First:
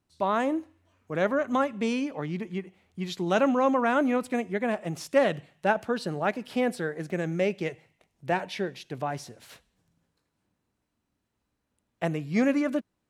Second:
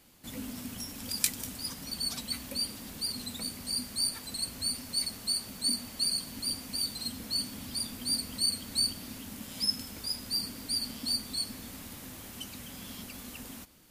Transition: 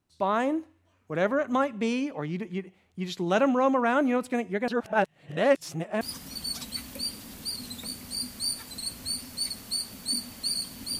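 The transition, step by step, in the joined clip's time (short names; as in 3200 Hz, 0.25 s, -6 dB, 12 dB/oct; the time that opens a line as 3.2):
first
4.68–6.01 reverse
6.01 switch to second from 1.57 s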